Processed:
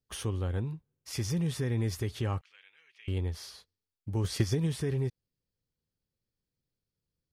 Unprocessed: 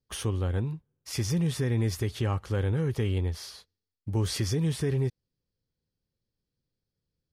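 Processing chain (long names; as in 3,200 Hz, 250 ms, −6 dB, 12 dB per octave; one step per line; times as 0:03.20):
0:02.41–0:03.08: four-pole ladder band-pass 2,700 Hz, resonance 60%
0:04.24–0:04.67: transient designer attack +9 dB, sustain −5 dB
level −3.5 dB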